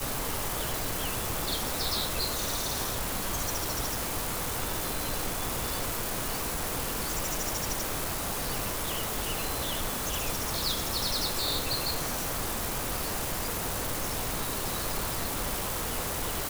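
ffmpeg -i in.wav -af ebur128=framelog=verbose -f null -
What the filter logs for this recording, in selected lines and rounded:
Integrated loudness:
  I:         -30.2 LUFS
  Threshold: -40.2 LUFS
Loudness range:
  LRA:         1.7 LU
  Threshold: -50.1 LUFS
  LRA low:   -30.8 LUFS
  LRA high:  -29.1 LUFS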